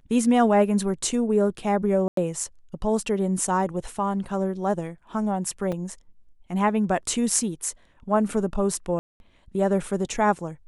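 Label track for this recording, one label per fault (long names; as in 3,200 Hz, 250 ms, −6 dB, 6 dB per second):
2.080000	2.170000	drop-out 93 ms
5.720000	5.730000	drop-out 5.1 ms
8.990000	9.200000	drop-out 211 ms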